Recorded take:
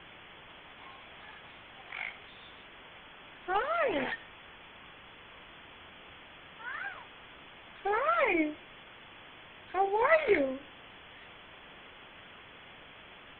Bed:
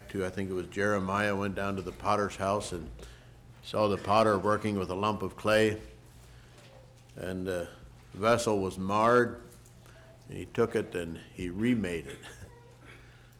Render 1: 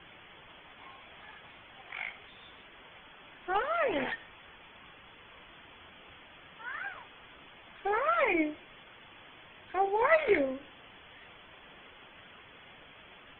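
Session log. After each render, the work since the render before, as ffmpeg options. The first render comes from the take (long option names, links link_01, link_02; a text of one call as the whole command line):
ffmpeg -i in.wav -af "afftdn=noise_reduction=6:noise_floor=-53" out.wav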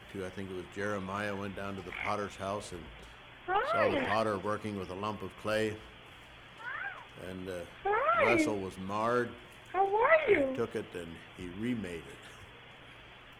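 ffmpeg -i in.wav -i bed.wav -filter_complex "[1:a]volume=-7dB[link_01];[0:a][link_01]amix=inputs=2:normalize=0" out.wav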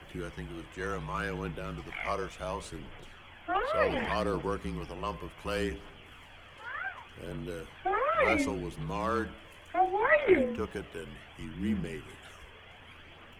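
ffmpeg -i in.wav -af "afreqshift=-34,aphaser=in_gain=1:out_gain=1:delay=2:decay=0.33:speed=0.68:type=triangular" out.wav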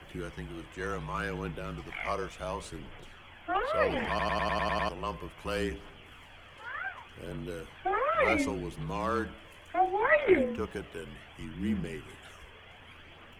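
ffmpeg -i in.wav -filter_complex "[0:a]asplit=9[link_01][link_02][link_03][link_04][link_05][link_06][link_07][link_08][link_09];[link_01]atrim=end=4.192[link_10];[link_02]atrim=start=4.088:end=4.192[link_11];[link_03]atrim=start=4.088:end=4.192[link_12];[link_04]atrim=start=4.088:end=4.192[link_13];[link_05]atrim=start=4.088:end=4.192[link_14];[link_06]atrim=start=4.088:end=4.192[link_15];[link_07]atrim=start=4.088:end=4.192[link_16];[link_08]atrim=start=4.088:end=4.192[link_17];[link_09]atrim=start=4.888[link_18];[link_10][link_11]acrossfade=duration=0.004:curve1=hsin:curve2=hsin[link_19];[link_19][link_12]acrossfade=duration=0.004:curve1=hsin:curve2=hsin[link_20];[link_20][link_13]acrossfade=duration=0.004:curve1=hsin:curve2=hsin[link_21];[link_21][link_14]acrossfade=duration=0.004:curve1=hsin:curve2=hsin[link_22];[link_22][link_15]acrossfade=duration=0.004:curve1=hsin:curve2=hsin[link_23];[link_23][link_16]acrossfade=duration=0.004:curve1=hsin:curve2=hsin[link_24];[link_24][link_17]acrossfade=duration=0.004:curve1=hsin:curve2=hsin[link_25];[link_25][link_18]acrossfade=duration=0.004:curve1=hsin:curve2=hsin" out.wav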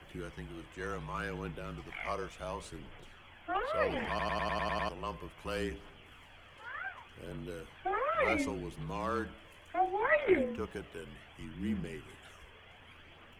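ffmpeg -i in.wav -af "volume=-4dB" out.wav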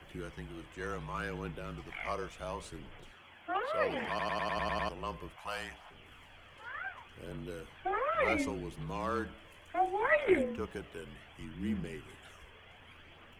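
ffmpeg -i in.wav -filter_complex "[0:a]asettb=1/sr,asplit=3[link_01][link_02][link_03];[link_01]atrim=end=3.114[link_04];[link_02]atrim=start=3.11:end=4.57,asetpts=PTS-STARTPTS,afade=type=in:duration=0.004:curve=qsin,afade=type=out:start_time=1.456:duration=0.004:curve=qsin,highpass=frequency=160:poles=1[link_05];[link_03]atrim=start=4.566[link_06];[link_04][link_05]acrossfade=duration=0.004:curve1=hsin:curve2=qsin[link_07];[link_07][link_06]acrossfade=duration=0.004:curve1=qsin:curve2=hsin,asettb=1/sr,asplit=3[link_08][link_09][link_10];[link_08]atrim=end=5.364[link_11];[link_09]atrim=start=5.36:end=5.91,asetpts=PTS-STARTPTS,afade=type=in:duration=0.004:curve=qsin,afade=type=out:start_time=0.546:duration=0.004:curve=qsin,lowshelf=frequency=540:width_type=q:width=3:gain=-10.5[link_12];[link_10]atrim=start=5.906[link_13];[link_11][link_12]acrossfade=duration=0.004:curve1=hsin:curve2=qsin[link_14];[link_14][link_13]acrossfade=duration=0.004:curve1=qsin:curve2=hsin,asettb=1/sr,asplit=3[link_15][link_16][link_17];[link_15]atrim=end=9.764[link_18];[link_16]atrim=start=9.76:end=10.42,asetpts=PTS-STARTPTS,afade=type=in:duration=0.004:curve=qsin,afade=type=out:start_time=0.656:duration=0.004:curve=qsin,equalizer=frequency=8900:width=1.1:gain=11[link_19];[link_17]atrim=start=10.416[link_20];[link_18][link_19]acrossfade=duration=0.004:curve1=hsin:curve2=qsin[link_21];[link_21][link_20]acrossfade=duration=0.004:curve1=qsin:curve2=hsin" out.wav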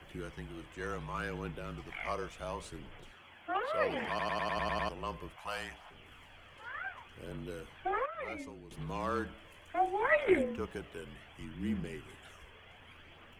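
ffmpeg -i in.wav -filter_complex "[0:a]asplit=3[link_01][link_02][link_03];[link_01]atrim=end=8.062[link_04];[link_02]atrim=start=8.058:end=8.712,asetpts=PTS-STARTPTS,volume=-11dB[link_05];[link_03]atrim=start=8.708[link_06];[link_04][link_05]acrossfade=duration=0.004:curve1=hsin:curve2=hsin[link_07];[link_07][link_06]acrossfade=duration=0.004:curve1=hsin:curve2=hsin" out.wav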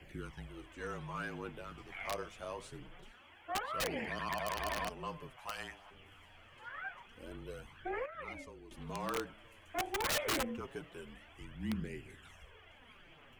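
ffmpeg -i in.wav -af "flanger=delay=0.4:depth=9.8:regen=8:speed=0.25:shape=sinusoidal,aeval=exprs='(mod(25.1*val(0)+1,2)-1)/25.1':channel_layout=same" out.wav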